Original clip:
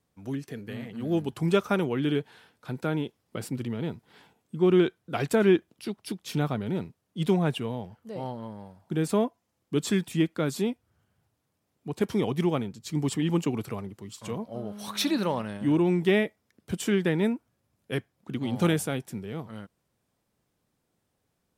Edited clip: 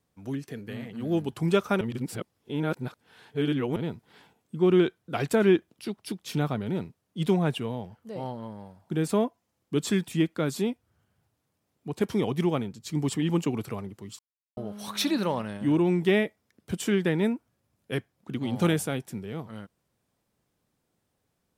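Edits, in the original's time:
1.81–3.76 s: reverse
14.19–14.57 s: mute

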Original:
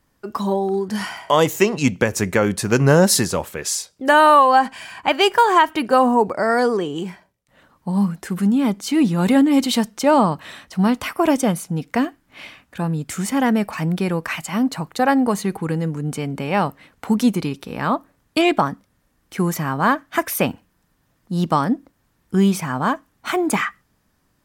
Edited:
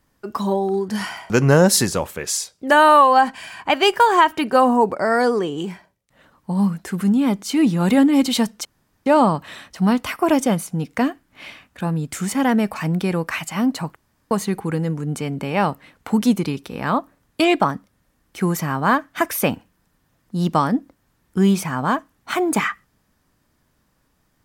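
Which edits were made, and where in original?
1.30–2.68 s: delete
10.03 s: insert room tone 0.41 s
14.93–15.28 s: room tone

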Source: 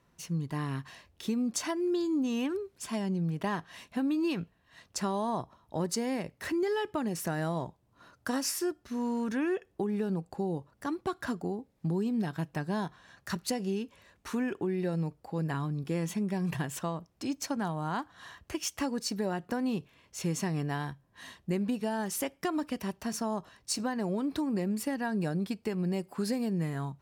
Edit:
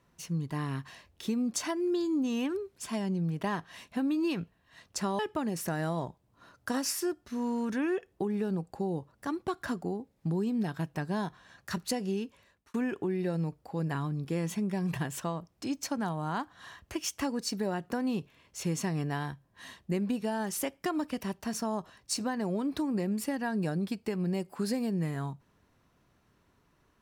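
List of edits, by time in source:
5.19–6.78 s: delete
13.82–14.33 s: fade out

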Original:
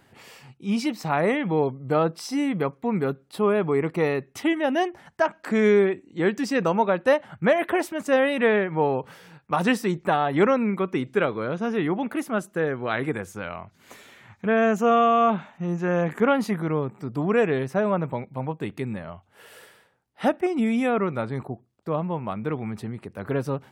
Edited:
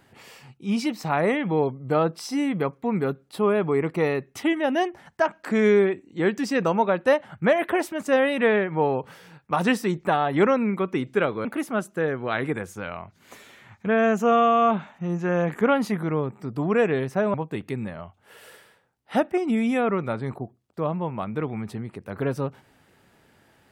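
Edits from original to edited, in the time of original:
11.45–12.04 s: delete
17.93–18.43 s: delete

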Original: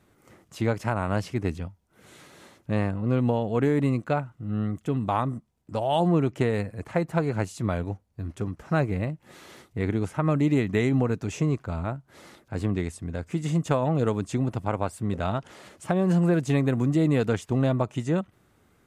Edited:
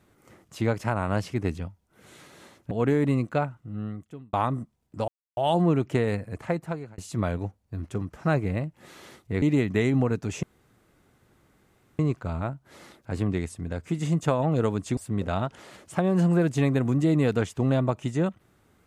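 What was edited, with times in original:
2.71–3.46 s: delete
4.15–5.08 s: fade out
5.83 s: insert silence 0.29 s
6.86–7.44 s: fade out
9.88–10.41 s: delete
11.42 s: insert room tone 1.56 s
14.40–14.89 s: delete

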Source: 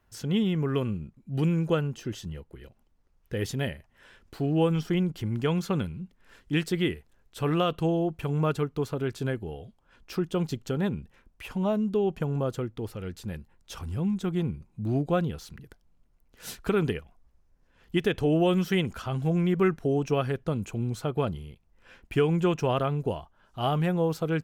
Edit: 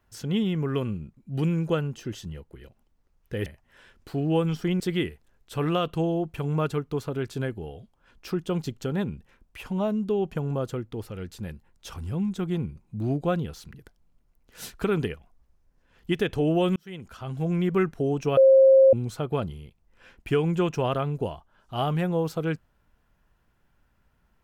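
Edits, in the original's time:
3.46–3.72 s: delete
5.06–6.65 s: delete
18.61–19.44 s: fade in
20.22–20.78 s: bleep 534 Hz -11.5 dBFS

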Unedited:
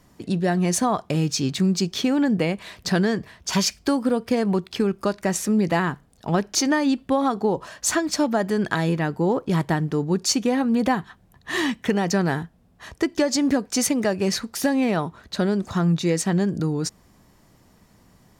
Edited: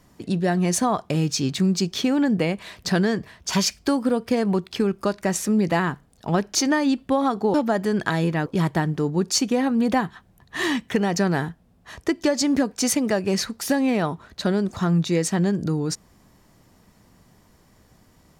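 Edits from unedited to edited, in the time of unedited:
7.54–8.19 s: delete
9.11–9.40 s: delete

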